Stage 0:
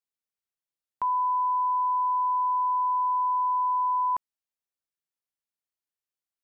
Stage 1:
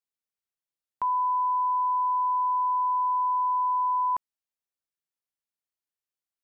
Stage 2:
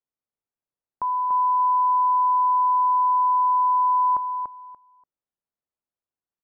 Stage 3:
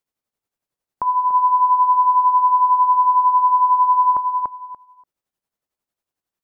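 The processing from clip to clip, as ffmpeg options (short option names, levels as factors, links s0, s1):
-af anull
-af "lowpass=1100,aecho=1:1:290|580|870:0.531|0.111|0.0234,volume=1.5"
-filter_complex "[0:a]asplit=2[s0][s1];[s1]alimiter=level_in=1.33:limit=0.0631:level=0:latency=1:release=157,volume=0.75,volume=0.794[s2];[s0][s2]amix=inputs=2:normalize=0,tremolo=f=11:d=0.6,volume=1.88"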